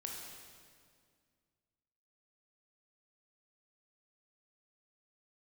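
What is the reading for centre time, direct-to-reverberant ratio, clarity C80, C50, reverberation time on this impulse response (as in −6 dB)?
87 ms, −1.0 dB, 3.0 dB, 1.0 dB, 2.0 s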